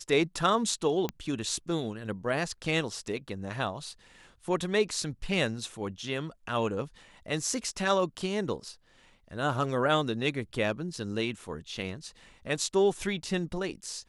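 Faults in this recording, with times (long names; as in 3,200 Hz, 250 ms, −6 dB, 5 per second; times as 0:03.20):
0:01.09: click −17 dBFS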